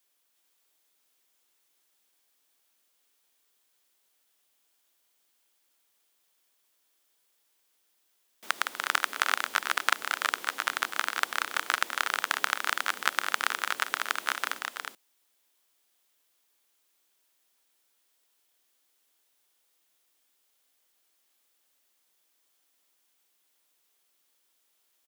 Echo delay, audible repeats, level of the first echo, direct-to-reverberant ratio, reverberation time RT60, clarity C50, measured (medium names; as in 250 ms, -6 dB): 245 ms, 2, -15.5 dB, no reverb, no reverb, no reverb